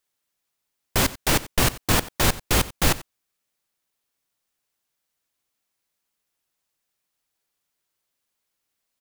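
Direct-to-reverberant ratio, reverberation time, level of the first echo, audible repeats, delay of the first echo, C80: no reverb, no reverb, -18.5 dB, 1, 90 ms, no reverb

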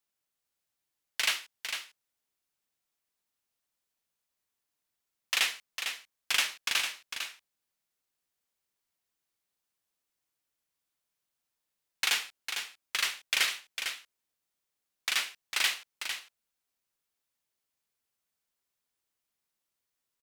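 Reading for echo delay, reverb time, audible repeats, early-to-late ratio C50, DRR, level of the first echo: 452 ms, no reverb, 1, no reverb, no reverb, -7.5 dB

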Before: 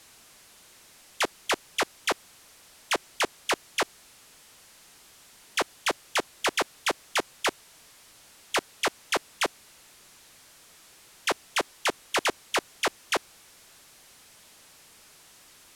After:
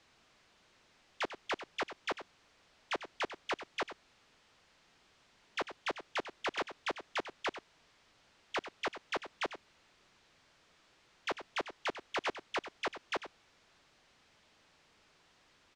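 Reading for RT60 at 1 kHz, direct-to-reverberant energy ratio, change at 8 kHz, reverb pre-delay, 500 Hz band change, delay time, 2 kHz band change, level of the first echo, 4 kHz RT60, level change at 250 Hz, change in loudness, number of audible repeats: no reverb, no reverb, -20.0 dB, no reverb, -8.5 dB, 96 ms, -9.5 dB, -12.0 dB, no reverb, -8.5 dB, -10.0 dB, 1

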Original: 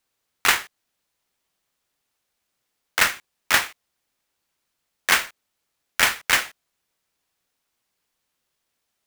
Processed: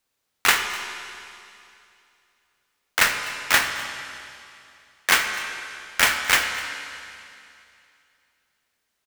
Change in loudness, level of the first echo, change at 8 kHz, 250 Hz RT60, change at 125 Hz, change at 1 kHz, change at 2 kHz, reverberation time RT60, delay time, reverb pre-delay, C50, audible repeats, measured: -1.0 dB, -20.0 dB, +0.5 dB, 2.6 s, +1.0 dB, +1.0 dB, +1.0 dB, 2.6 s, 251 ms, 14 ms, 6.0 dB, 1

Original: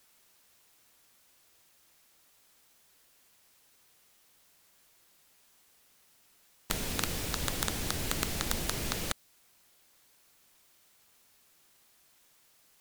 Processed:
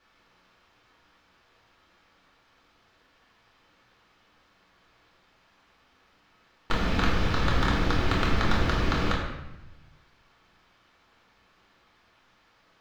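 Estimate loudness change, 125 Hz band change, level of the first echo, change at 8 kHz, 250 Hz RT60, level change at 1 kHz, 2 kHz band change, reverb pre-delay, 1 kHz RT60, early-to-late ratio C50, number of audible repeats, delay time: +6.0 dB, +11.5 dB, no echo, -11.5 dB, 1.2 s, +11.5 dB, +9.0 dB, 3 ms, 0.90 s, 2.5 dB, no echo, no echo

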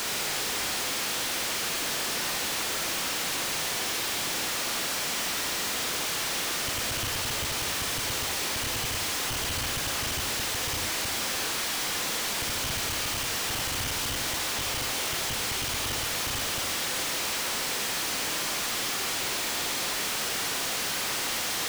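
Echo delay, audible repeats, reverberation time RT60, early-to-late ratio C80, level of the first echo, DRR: no echo, no echo, 0.75 s, 8.5 dB, no echo, 3.0 dB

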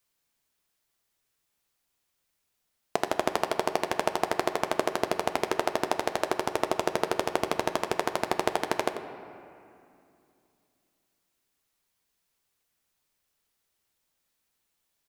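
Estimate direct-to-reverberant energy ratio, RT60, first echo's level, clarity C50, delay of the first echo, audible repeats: 7.0 dB, 2.6 s, -12.0 dB, 8.0 dB, 91 ms, 1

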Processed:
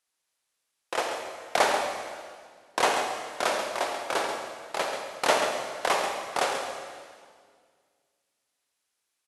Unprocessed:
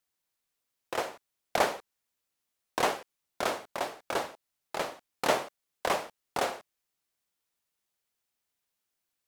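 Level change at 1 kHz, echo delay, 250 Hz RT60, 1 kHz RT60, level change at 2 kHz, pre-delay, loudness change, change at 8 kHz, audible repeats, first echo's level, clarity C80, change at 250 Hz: +5.5 dB, 136 ms, 2.3 s, 1.8 s, +6.0 dB, 34 ms, +4.5 dB, +6.5 dB, 1, -8.5 dB, 4.0 dB, +1.5 dB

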